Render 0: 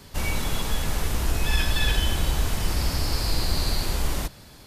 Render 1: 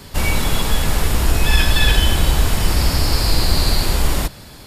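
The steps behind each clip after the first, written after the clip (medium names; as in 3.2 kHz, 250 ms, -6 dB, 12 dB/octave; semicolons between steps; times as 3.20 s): band-stop 6.1 kHz, Q 14; trim +8.5 dB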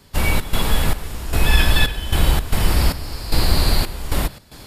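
trance gate ".xx.xxx...xxxx." 113 bpm -12 dB; dynamic bell 6.3 kHz, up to -6 dB, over -39 dBFS, Q 1.5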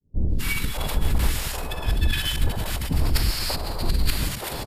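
fade-in on the opening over 0.76 s; compressor with a negative ratio -25 dBFS, ratio -1; three bands offset in time lows, highs, mids 250/590 ms, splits 400/1200 Hz; trim +1.5 dB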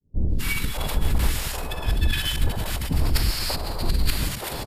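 no audible change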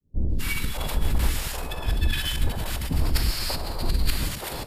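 reverberation, pre-delay 3 ms, DRR 13 dB; trim -2 dB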